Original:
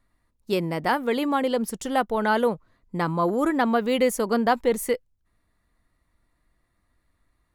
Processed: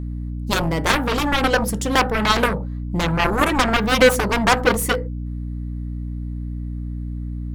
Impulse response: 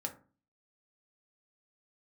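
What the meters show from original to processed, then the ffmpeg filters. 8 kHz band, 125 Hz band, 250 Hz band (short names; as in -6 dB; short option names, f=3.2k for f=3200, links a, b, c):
+9.0 dB, +12.0 dB, +3.0 dB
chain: -filter_complex "[0:a]asplit=2[a][b];[1:a]atrim=start_sample=2205,atrim=end_sample=6174[c];[b][c]afir=irnorm=-1:irlink=0,volume=-1.5dB[d];[a][d]amix=inputs=2:normalize=0,aeval=exprs='0.631*(cos(1*acos(clip(val(0)/0.631,-1,1)))-cos(1*PI/2))+0.1*(cos(3*acos(clip(val(0)/0.631,-1,1)))-cos(3*PI/2))+0.178*(cos(7*acos(clip(val(0)/0.631,-1,1)))-cos(7*PI/2))':c=same,aeval=exprs='val(0)+0.0447*(sin(2*PI*60*n/s)+sin(2*PI*2*60*n/s)/2+sin(2*PI*3*60*n/s)/3+sin(2*PI*4*60*n/s)/4+sin(2*PI*5*60*n/s)/5)':c=same,volume=1dB"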